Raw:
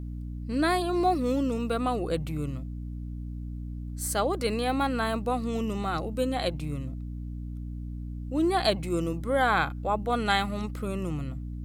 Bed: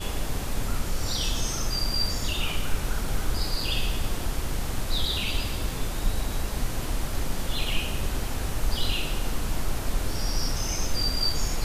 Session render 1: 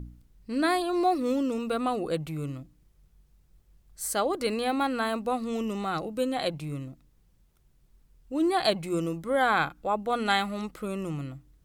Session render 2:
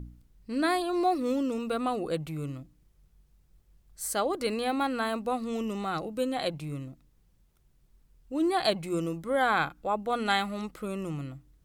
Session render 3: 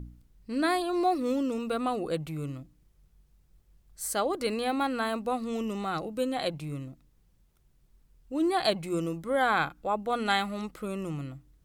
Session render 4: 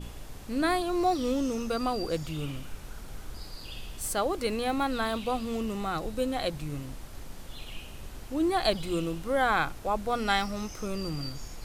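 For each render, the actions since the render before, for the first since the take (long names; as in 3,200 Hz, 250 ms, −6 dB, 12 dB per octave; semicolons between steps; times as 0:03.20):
hum removal 60 Hz, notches 5
level −1.5 dB
no processing that can be heard
mix in bed −14.5 dB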